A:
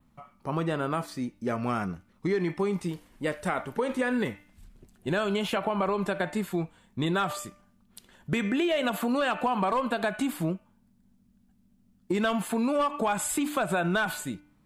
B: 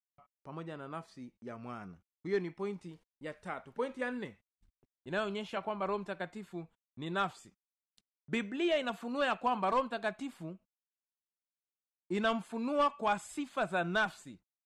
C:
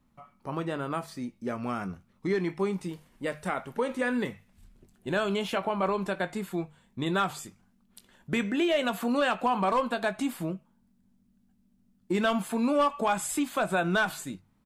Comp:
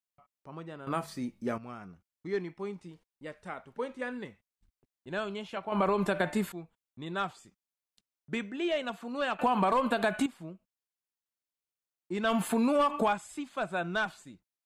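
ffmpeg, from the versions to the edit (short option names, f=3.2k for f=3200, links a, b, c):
-filter_complex "[0:a]asplit=3[a][b][c];[1:a]asplit=5[d][e][f][g][h];[d]atrim=end=0.872[i];[2:a]atrim=start=0.868:end=1.582[j];[e]atrim=start=1.578:end=5.722[k];[a]atrim=start=5.718:end=6.522[l];[f]atrim=start=6.518:end=9.392[m];[b]atrim=start=9.388:end=10.262[n];[g]atrim=start=10.258:end=12.32[o];[c]atrim=start=12.22:end=13.17[p];[h]atrim=start=13.07[q];[i][j]acrossfade=d=0.004:c1=hsin:c2=hsin[r];[r][k]acrossfade=d=0.004:c1=hsin:c2=hsin[s];[s][l]acrossfade=d=0.004:c1=hsin:c2=hsin[t];[t][m]acrossfade=d=0.004:c1=hsin:c2=hsin[u];[u][n]acrossfade=d=0.004:c1=hsin:c2=hsin[v];[v][o]acrossfade=d=0.004:c1=hsin:c2=hsin[w];[w][p]acrossfade=d=0.1:c1=tri:c2=tri[x];[x][q]acrossfade=d=0.1:c1=tri:c2=tri"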